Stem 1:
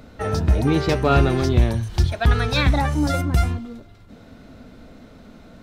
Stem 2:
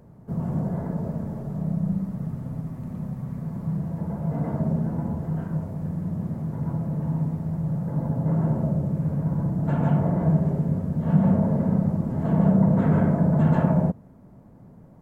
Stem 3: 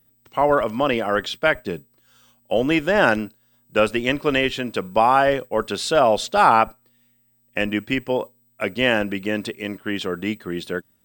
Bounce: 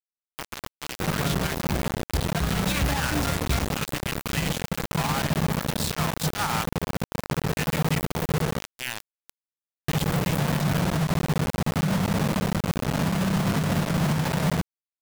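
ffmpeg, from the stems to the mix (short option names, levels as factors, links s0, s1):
-filter_complex "[0:a]acontrast=87,acrusher=bits=6:mix=0:aa=0.000001,adelay=150,volume=0.224,afade=t=in:st=1.68:d=0.63:silence=0.421697,asplit=2[s0][s1];[s1]volume=0.355[s2];[1:a]adynamicequalizer=threshold=0.0158:dfrequency=370:dqfactor=1:tfrequency=370:tqfactor=1:attack=5:release=100:ratio=0.375:range=1.5:mode=cutabove:tftype=bell,acrossover=split=170|3000[s3][s4][s5];[s4]acompressor=threshold=0.0355:ratio=2[s6];[s3][s6][s5]amix=inputs=3:normalize=0,adelay=700,volume=1.19,asplit=3[s7][s8][s9];[s7]atrim=end=8.61,asetpts=PTS-STARTPTS,afade=t=out:st=8.606:d=0.004:c=hsin[s10];[s8]atrim=start=8.61:end=9.88,asetpts=PTS-STARTPTS,volume=0[s11];[s9]atrim=start=9.88,asetpts=PTS-STARTPTS,afade=t=in:d=0.004:c=hsin[s12];[s10][s11][s12]concat=n=3:v=0:a=1[s13];[2:a]firequalizer=gain_entry='entry(110,0);entry(530,-18);entry(850,1);entry(6700,8)':delay=0.05:min_phase=1,volume=0.251[s14];[s2]aecho=0:1:791|1582|2373|3164|3955|4746|5537|6328:1|0.56|0.314|0.176|0.0983|0.0551|0.0308|0.0173[s15];[s0][s13][s14][s15]amix=inputs=4:normalize=0,acrusher=bits=3:mix=0:aa=0.000001,alimiter=limit=0.112:level=0:latency=1:release=28"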